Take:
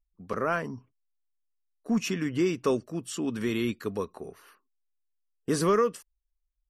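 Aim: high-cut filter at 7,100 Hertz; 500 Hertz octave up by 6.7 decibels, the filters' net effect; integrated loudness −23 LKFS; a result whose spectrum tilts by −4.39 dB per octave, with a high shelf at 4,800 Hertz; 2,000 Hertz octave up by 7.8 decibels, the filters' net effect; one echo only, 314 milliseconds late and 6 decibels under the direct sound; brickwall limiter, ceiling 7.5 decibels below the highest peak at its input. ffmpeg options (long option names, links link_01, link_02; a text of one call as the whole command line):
ffmpeg -i in.wav -af "lowpass=7100,equalizer=frequency=500:width_type=o:gain=8,equalizer=frequency=2000:width_type=o:gain=9,highshelf=frequency=4800:gain=4,alimiter=limit=-15.5dB:level=0:latency=1,aecho=1:1:314:0.501,volume=4dB" out.wav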